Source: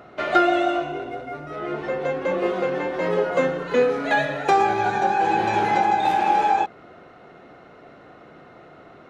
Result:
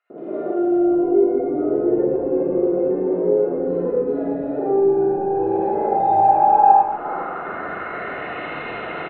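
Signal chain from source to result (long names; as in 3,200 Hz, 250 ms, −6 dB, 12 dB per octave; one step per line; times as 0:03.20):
gate on every frequency bin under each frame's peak −30 dB strong
high-shelf EQ 2,000 Hz +11.5 dB
downward compressor 10 to 1, threshold −31 dBFS, peak gain reduction 21 dB
gain into a clipping stage and back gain 28 dB
low-pass filter sweep 380 Hz → 2,600 Hz, 0:05.02–0:08.41
three-band delay without the direct sound highs, mids, lows 100/620 ms, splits 170/2,300 Hz
four-comb reverb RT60 1.3 s, DRR −8 dB
level +6 dB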